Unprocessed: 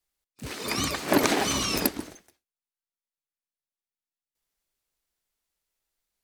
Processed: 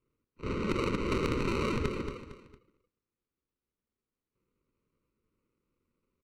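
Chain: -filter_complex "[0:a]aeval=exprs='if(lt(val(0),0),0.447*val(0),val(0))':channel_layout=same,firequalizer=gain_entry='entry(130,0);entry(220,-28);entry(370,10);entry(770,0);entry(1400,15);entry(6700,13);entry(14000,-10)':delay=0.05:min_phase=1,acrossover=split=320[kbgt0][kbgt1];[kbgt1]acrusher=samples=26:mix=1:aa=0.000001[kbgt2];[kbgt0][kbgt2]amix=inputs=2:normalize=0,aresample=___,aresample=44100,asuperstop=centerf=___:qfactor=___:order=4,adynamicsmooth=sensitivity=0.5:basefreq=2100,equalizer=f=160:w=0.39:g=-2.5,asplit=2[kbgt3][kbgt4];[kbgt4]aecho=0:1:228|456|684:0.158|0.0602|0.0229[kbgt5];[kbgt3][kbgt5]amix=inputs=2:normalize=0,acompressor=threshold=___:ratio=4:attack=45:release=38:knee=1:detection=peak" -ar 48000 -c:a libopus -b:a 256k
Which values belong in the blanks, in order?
22050, 740, 1.1, 0.0178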